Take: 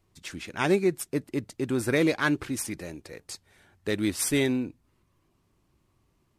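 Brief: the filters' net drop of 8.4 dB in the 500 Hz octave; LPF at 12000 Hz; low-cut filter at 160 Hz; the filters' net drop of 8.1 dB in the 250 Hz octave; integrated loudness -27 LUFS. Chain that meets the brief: HPF 160 Hz; LPF 12000 Hz; bell 250 Hz -6.5 dB; bell 500 Hz -8.5 dB; gain +5.5 dB

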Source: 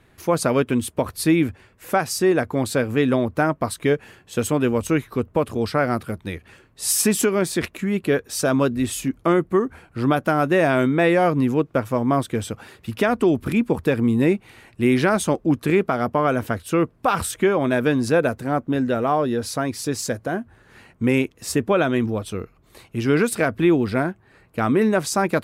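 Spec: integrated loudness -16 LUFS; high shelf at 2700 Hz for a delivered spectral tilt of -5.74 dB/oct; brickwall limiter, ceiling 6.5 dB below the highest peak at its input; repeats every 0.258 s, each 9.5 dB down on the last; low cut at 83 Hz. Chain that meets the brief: HPF 83 Hz; high shelf 2700 Hz -5 dB; limiter -13 dBFS; feedback echo 0.258 s, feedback 33%, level -9.5 dB; gain +8 dB

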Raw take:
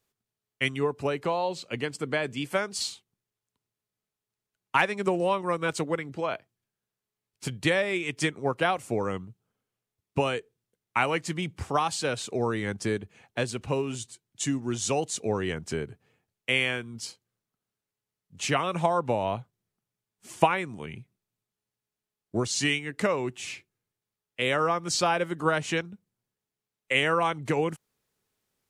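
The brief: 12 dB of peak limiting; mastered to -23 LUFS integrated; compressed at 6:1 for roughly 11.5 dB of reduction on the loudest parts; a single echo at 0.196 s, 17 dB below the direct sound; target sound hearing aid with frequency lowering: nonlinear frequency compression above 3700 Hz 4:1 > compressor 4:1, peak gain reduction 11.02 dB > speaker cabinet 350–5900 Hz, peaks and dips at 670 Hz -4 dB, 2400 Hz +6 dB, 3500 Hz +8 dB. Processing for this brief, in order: compressor 6:1, threshold -27 dBFS; limiter -25.5 dBFS; echo 0.196 s -17 dB; nonlinear frequency compression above 3700 Hz 4:1; compressor 4:1, threshold -42 dBFS; speaker cabinet 350–5900 Hz, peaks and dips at 670 Hz -4 dB, 2400 Hz +6 dB, 3500 Hz +8 dB; gain +20 dB

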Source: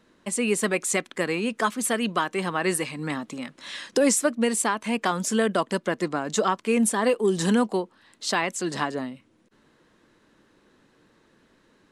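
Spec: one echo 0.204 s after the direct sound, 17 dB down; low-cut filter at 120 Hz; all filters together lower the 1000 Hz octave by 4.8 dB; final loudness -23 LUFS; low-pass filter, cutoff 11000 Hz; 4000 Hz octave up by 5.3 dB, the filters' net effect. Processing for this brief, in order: HPF 120 Hz; LPF 11000 Hz; bell 1000 Hz -6.5 dB; bell 4000 Hz +7.5 dB; echo 0.204 s -17 dB; gain +2.5 dB

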